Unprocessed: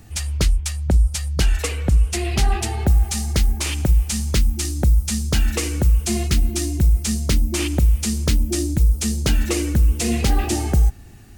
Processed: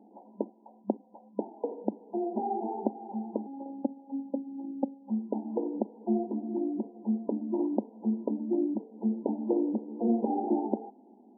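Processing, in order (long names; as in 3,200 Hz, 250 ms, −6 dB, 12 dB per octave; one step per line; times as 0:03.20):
0:03.46–0:05.10: phases set to zero 274 Hz
brick-wall band-pass 200–1,000 Hz
level −3 dB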